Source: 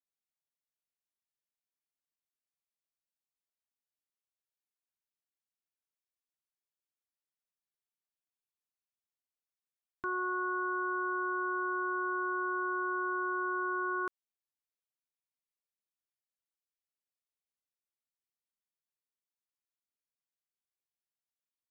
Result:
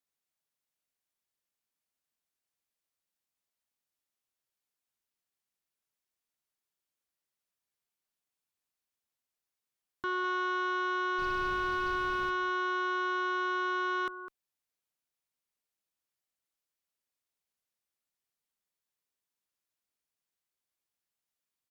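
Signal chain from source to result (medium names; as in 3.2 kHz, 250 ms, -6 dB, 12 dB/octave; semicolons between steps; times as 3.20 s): 11.18–12.29 s: added noise brown -44 dBFS; echo from a far wall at 35 m, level -14 dB; Chebyshev shaper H 5 -17 dB, 6 -39 dB, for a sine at -23.5 dBFS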